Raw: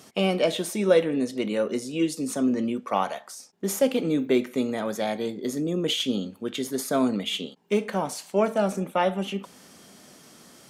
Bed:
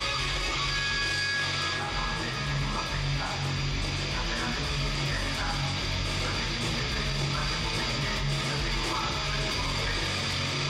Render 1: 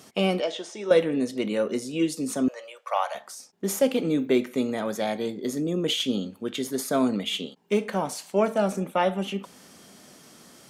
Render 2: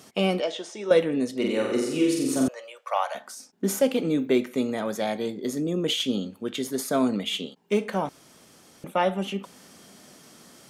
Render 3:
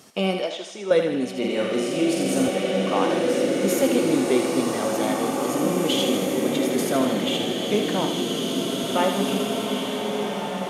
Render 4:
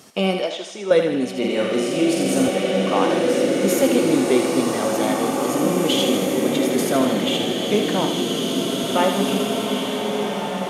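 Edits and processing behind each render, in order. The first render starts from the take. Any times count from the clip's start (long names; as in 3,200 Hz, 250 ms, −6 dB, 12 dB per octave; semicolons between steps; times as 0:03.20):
0:00.40–0:00.91: loudspeaker in its box 490–6,300 Hz, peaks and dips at 590 Hz −4 dB, 1,100 Hz −5 dB, 1,600 Hz −4 dB, 2,400 Hz −8 dB, 4,100 Hz −7 dB; 0:02.48–0:03.15: elliptic high-pass filter 550 Hz, stop band 50 dB
0:01.36–0:02.48: flutter between parallel walls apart 7.7 metres, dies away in 1 s; 0:03.09–0:03.81: hollow resonant body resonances 250/1,500 Hz, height 10 dB; 0:08.09–0:08.84: fill with room tone
feedback echo with a high-pass in the loop 79 ms, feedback 62%, high-pass 580 Hz, level −6.5 dB; slow-attack reverb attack 2,500 ms, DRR −1.5 dB
level +3 dB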